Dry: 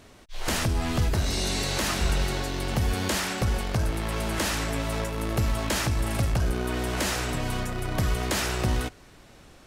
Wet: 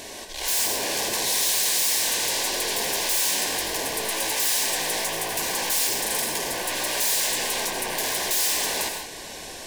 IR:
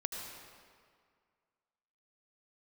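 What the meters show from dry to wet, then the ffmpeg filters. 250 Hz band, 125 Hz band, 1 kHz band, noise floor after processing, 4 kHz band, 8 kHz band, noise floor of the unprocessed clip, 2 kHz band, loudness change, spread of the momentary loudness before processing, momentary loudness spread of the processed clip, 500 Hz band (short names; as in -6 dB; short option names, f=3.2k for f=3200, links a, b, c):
-8.0 dB, -20.5 dB, +1.5 dB, -38 dBFS, +7.5 dB, +11.5 dB, -52 dBFS, +3.5 dB, +5.0 dB, 4 LU, 6 LU, 0.0 dB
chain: -filter_complex "[0:a]aeval=exprs='0.211*sin(PI/2*7.94*val(0)/0.211)':c=same,acompressor=threshold=-24dB:ratio=2,asuperstop=centerf=1300:order=4:qfactor=3.2,bass=f=250:g=-15,treble=f=4k:g=7[a];[1:a]atrim=start_sample=2205,afade=t=out:st=0.24:d=0.01,atrim=end_sample=11025[b];[a][b]afir=irnorm=-1:irlink=0,volume=-6dB"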